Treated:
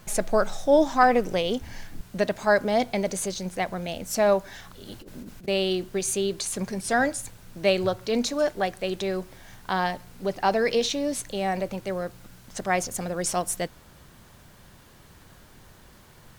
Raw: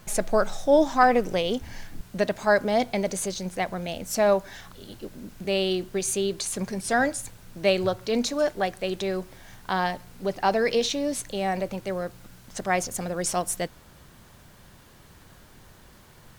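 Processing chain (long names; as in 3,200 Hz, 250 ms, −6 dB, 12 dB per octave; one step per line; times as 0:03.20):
0:04.86–0:05.48: compressor whose output falls as the input rises −40 dBFS, ratio −0.5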